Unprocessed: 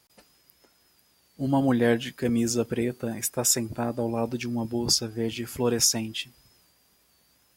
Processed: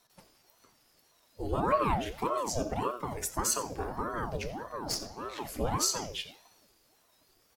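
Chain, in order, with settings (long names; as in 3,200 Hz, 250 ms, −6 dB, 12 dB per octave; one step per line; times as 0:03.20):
spectral magnitudes quantised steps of 15 dB
in parallel at −1 dB: downward compressor, threshold −32 dBFS, peak gain reduction 14 dB
0:04.50–0:05.38: on the sum: tube saturation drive 17 dB, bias 0.7
slap from a distant wall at 15 metres, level −15 dB
on a send at −4 dB: convolution reverb RT60 0.55 s, pre-delay 3 ms
on the sum: ring modulator whose carrier an LFO sweeps 510 Hz, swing 70%, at 1.7 Hz
level −6 dB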